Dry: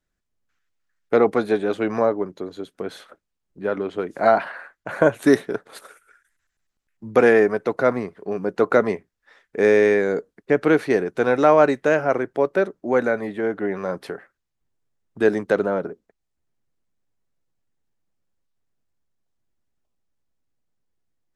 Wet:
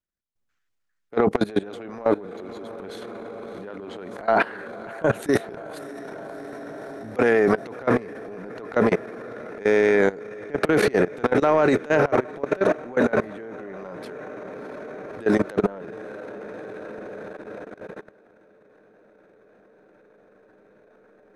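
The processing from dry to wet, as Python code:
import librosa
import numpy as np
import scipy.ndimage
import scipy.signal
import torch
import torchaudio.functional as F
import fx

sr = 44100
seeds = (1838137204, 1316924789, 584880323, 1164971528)

y = fx.echo_diffused(x, sr, ms=646, feedback_pct=79, wet_db=-15.0)
y = fx.transient(y, sr, attack_db=-10, sustain_db=11)
y = fx.level_steps(y, sr, step_db=19)
y = y * 10.0 ** (1.5 / 20.0)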